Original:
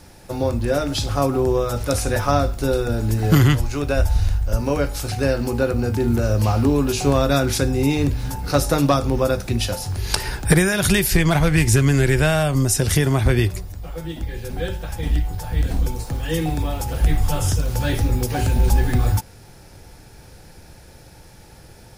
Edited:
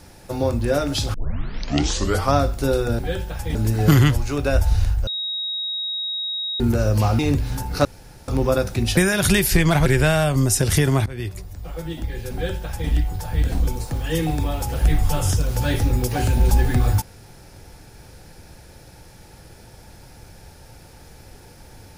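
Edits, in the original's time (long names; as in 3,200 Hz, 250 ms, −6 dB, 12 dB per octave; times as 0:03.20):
0:01.14: tape start 1.20 s
0:04.51–0:06.04: beep over 3,790 Hz −23.5 dBFS
0:06.63–0:07.92: remove
0:08.58–0:09.01: fill with room tone
0:09.70–0:10.57: remove
0:11.46–0:12.05: remove
0:13.25–0:13.90: fade in, from −23 dB
0:14.52–0:15.08: duplicate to 0:02.99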